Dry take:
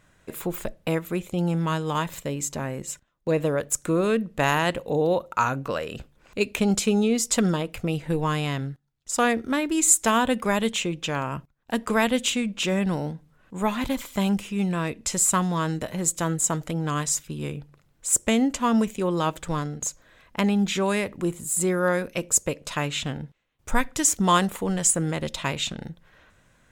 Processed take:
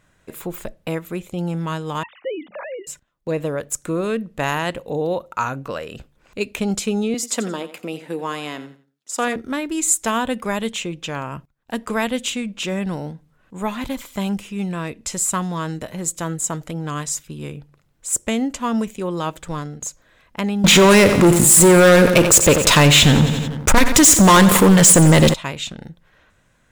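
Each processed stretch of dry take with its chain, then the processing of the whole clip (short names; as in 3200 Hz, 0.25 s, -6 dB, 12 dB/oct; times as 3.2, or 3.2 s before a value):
2.03–2.87 sine-wave speech + notches 50/100/150/200/250 Hz
7.14–9.36 HPF 220 Hz 24 dB/oct + feedback echo 87 ms, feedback 27%, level -14 dB
20.64–25.34 sample leveller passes 5 + feedback echo 89 ms, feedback 55%, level -14.5 dB + fast leveller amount 50%
whole clip: dry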